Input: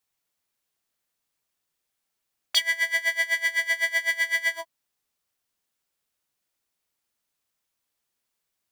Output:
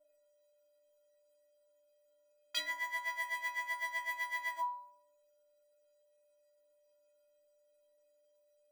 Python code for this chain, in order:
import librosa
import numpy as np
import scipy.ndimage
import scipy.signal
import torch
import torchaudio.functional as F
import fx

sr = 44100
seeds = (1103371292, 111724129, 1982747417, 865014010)

y = x + 10.0 ** (-60.0 / 20.0) * np.sin(2.0 * np.pi * 590.0 * np.arange(len(x)) / sr)
y = fx.fold_sine(y, sr, drive_db=4, ceiling_db=-7.0)
y = fx.stiff_resonator(y, sr, f0_hz=290.0, decay_s=0.77, stiffness=0.03)
y = F.gain(torch.from_numpy(y), 5.5).numpy()